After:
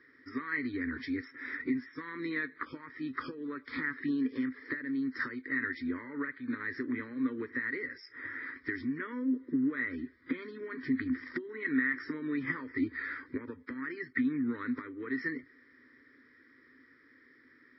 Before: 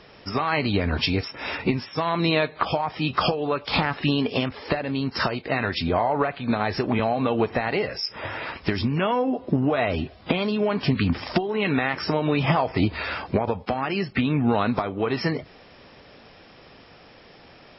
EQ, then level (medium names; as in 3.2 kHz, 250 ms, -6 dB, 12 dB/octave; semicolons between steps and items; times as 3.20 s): two resonant band-passes 700 Hz, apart 2.9 oct; static phaser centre 740 Hz, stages 6; +4.0 dB